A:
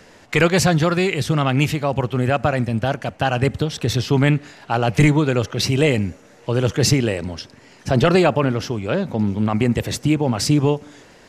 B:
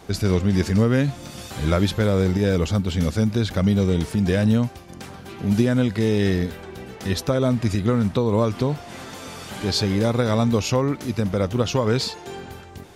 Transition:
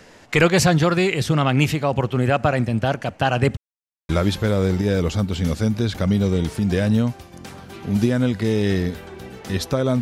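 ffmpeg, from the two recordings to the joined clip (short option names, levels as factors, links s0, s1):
-filter_complex "[0:a]apad=whole_dur=10.01,atrim=end=10.01,asplit=2[s0][s1];[s0]atrim=end=3.57,asetpts=PTS-STARTPTS,afade=t=out:st=3.566:d=0.004:c=hsin[s2];[s1]atrim=start=3.57:end=4.09,asetpts=PTS-STARTPTS,volume=0[s3];[1:a]atrim=start=1.65:end=7.57,asetpts=PTS-STARTPTS,afade=t=in:d=0.004:c=hsin[s4];[s2][s3][s4]concat=n=3:v=0:a=1"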